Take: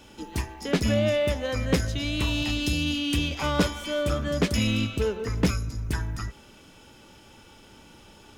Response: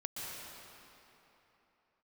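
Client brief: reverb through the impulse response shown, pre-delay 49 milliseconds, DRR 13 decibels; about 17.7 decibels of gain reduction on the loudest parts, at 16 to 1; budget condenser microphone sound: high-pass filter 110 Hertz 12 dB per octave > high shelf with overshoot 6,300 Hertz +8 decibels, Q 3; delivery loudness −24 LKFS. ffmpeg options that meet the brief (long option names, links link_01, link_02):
-filter_complex "[0:a]acompressor=threshold=-35dB:ratio=16,asplit=2[link_01][link_02];[1:a]atrim=start_sample=2205,adelay=49[link_03];[link_02][link_03]afir=irnorm=-1:irlink=0,volume=-14.5dB[link_04];[link_01][link_04]amix=inputs=2:normalize=0,highpass=110,highshelf=frequency=6300:width_type=q:width=3:gain=8,volume=16.5dB"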